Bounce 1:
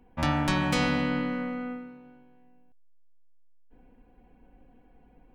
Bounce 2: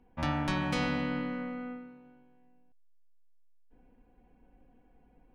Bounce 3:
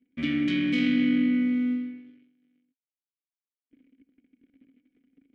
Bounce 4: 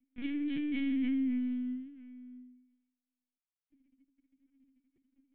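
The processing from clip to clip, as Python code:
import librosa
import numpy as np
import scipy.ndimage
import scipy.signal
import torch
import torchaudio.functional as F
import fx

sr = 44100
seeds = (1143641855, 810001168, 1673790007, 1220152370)

y1 = fx.high_shelf(x, sr, hz=8300.0, db=-9.0)
y1 = fx.notch(y1, sr, hz=7500.0, q=16.0)
y1 = y1 * 10.0 ** (-5.0 / 20.0)
y2 = fx.leveller(y1, sr, passes=3)
y2 = fx.vowel_filter(y2, sr, vowel='i')
y2 = y2 * 10.0 ** (8.5 / 20.0)
y3 = y2 + 10.0 ** (-15.5 / 20.0) * np.pad(y2, (int(656 * sr / 1000.0), 0))[:len(y2)]
y3 = fx.lpc_vocoder(y3, sr, seeds[0], excitation='pitch_kept', order=10)
y3 = y3 * 10.0 ** (-8.5 / 20.0)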